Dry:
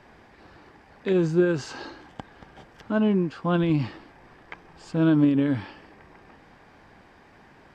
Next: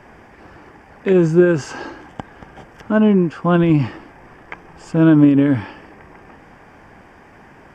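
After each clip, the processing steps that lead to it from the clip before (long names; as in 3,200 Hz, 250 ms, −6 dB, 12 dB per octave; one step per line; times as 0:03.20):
parametric band 4,000 Hz −15 dB 0.39 octaves
level +8.5 dB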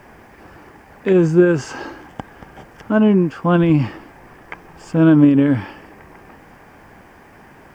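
bit-depth reduction 10 bits, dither none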